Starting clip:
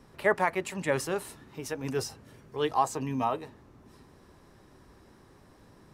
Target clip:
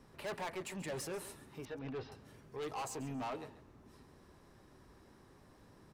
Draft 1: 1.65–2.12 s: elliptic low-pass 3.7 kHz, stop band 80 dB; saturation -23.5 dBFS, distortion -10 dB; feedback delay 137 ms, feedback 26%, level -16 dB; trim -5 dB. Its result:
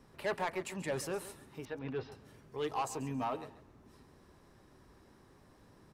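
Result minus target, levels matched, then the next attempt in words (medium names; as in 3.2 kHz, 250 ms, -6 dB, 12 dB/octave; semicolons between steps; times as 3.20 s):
saturation: distortion -6 dB
1.65–2.12 s: elliptic low-pass 3.7 kHz, stop band 80 dB; saturation -32.5 dBFS, distortion -4 dB; feedback delay 137 ms, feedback 26%, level -16 dB; trim -5 dB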